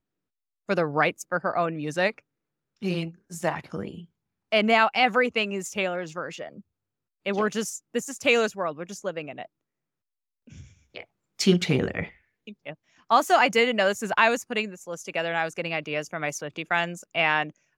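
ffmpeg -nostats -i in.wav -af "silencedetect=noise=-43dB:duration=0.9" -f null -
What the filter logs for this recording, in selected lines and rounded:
silence_start: 9.46
silence_end: 10.48 | silence_duration: 1.02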